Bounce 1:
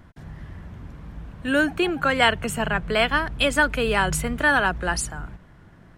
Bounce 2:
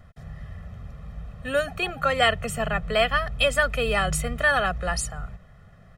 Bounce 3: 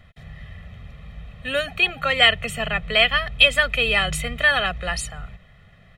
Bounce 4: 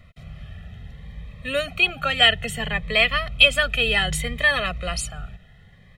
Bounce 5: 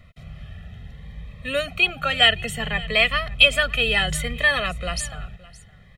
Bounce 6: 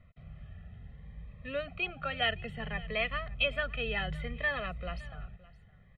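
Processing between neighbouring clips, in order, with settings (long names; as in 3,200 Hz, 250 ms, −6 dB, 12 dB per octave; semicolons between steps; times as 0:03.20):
comb filter 1.6 ms, depth 97%; level −4.5 dB
flat-topped bell 2,800 Hz +10.5 dB 1.3 octaves; level −1 dB
phaser whose notches keep moving one way rising 0.64 Hz; level +1 dB
single-tap delay 566 ms −21 dB
high-frequency loss of the air 430 metres; level −9 dB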